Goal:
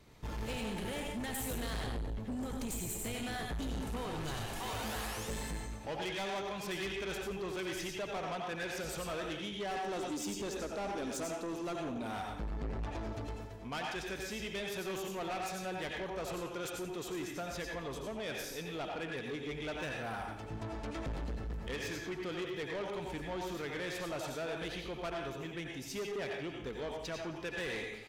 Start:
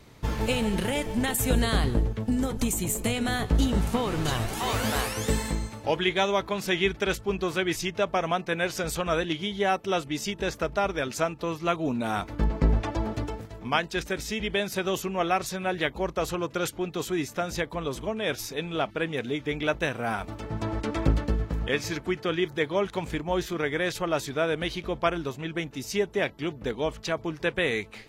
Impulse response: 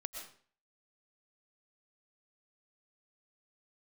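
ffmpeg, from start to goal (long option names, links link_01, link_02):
-filter_complex "[0:a]asettb=1/sr,asplit=3[link_01][link_02][link_03];[link_01]atrim=end=9.714[link_04];[link_02]atrim=start=9.71:end=11.76,asetpts=PTS-STARTPTS,afade=type=in:duration=0.004:curve=qsin,afade=type=out:start_time=2.046:duration=0.004:curve=qsin,equalizer=frequency=125:width_type=o:width=1:gain=-8,equalizer=frequency=250:width_type=o:width=1:gain=11,equalizer=frequency=2000:width_type=o:width=1:gain=-6,equalizer=frequency=8000:width_type=o:width=1:gain=8[link_05];[link_03]atrim=start=11.756[link_06];[link_04][link_05]acrossfade=duration=0.004:curve1=hsin:curve2=qsin[link_07];[link_07][link_06]acrossfade=duration=0.004:curve1=qsin:curve2=hsin,aecho=1:1:87|174|261|348|435:0.251|0.121|0.0579|0.0278|0.0133[link_08];[1:a]atrim=start_sample=2205,asetrate=57330,aresample=44100[link_09];[link_08][link_09]afir=irnorm=-1:irlink=0,asoftclip=type=tanh:threshold=-31.5dB,volume=-3dB"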